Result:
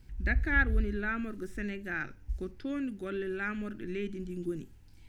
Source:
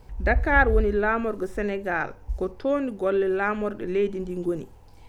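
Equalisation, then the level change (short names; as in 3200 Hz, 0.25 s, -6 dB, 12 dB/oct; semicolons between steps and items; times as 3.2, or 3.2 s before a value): band shelf 700 Hz -15 dB; -5.5 dB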